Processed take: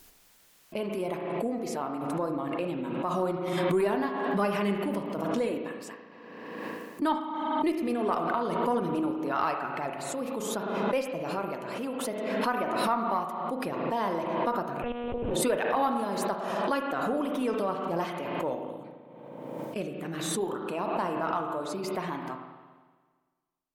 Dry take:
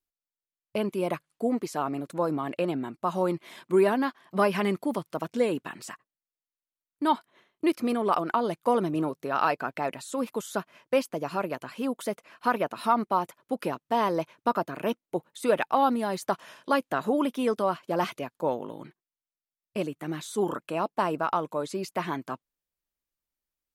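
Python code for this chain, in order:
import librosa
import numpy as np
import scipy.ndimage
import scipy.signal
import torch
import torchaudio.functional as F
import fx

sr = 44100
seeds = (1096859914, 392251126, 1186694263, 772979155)

y = fx.spec_quant(x, sr, step_db=15)
y = fx.rev_spring(y, sr, rt60_s=1.5, pass_ms=(35, 54), chirp_ms=50, drr_db=3.5)
y = fx.lpc_monotone(y, sr, seeds[0], pitch_hz=240.0, order=8, at=(14.82, 15.31))
y = fx.cheby_harmonics(y, sr, harmonics=(2,), levels_db=(-22,), full_scale_db=-10.5)
y = fx.pre_swell(y, sr, db_per_s=28.0)
y = F.gain(torch.from_numpy(y), -5.0).numpy()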